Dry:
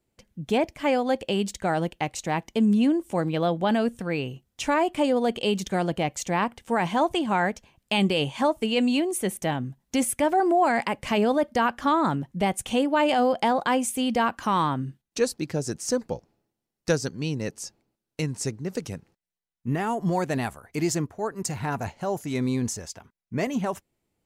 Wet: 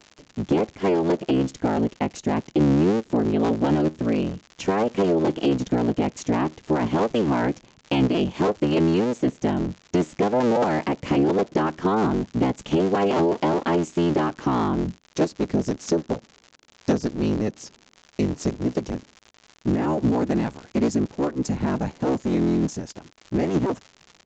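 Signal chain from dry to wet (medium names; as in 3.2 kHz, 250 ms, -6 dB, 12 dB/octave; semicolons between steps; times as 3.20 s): cycle switcher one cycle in 3, inverted; peaking EQ 240 Hz +14 dB 2.7 oct; compression 2.5:1, threshold -16 dBFS, peak gain reduction 7.5 dB; crackle 150 per s -29 dBFS; resampled via 16 kHz; trim -3 dB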